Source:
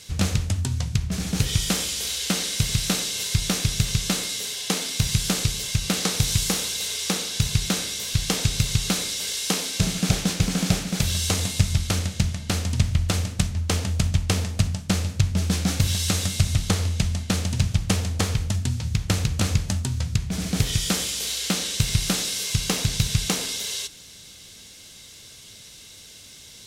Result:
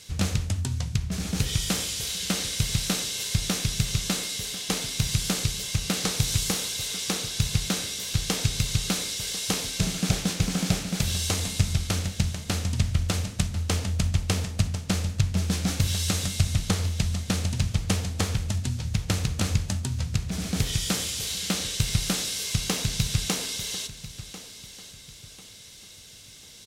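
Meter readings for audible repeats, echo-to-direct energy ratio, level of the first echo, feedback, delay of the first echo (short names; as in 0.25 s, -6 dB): 3, -14.5 dB, -15.0 dB, 35%, 1.044 s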